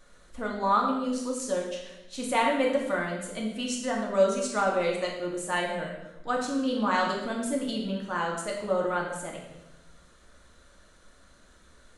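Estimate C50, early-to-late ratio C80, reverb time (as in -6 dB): 3.5 dB, 6.0 dB, 0.95 s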